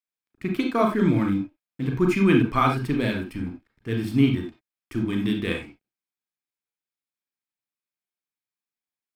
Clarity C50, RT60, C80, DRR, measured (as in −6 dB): 6.0 dB, non-exponential decay, 13.0 dB, 1.5 dB